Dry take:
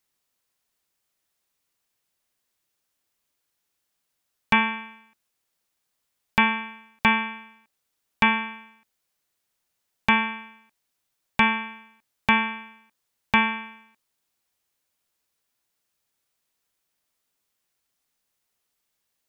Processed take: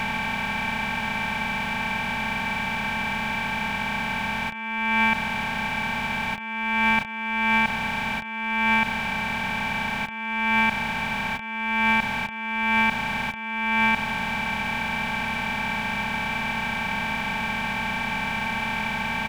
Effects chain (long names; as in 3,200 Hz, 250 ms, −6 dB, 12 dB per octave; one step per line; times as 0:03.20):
compressor on every frequency bin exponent 0.2
comb filter 1.3 ms, depth 36%
compressor whose output falls as the input rises −22 dBFS, ratio −0.5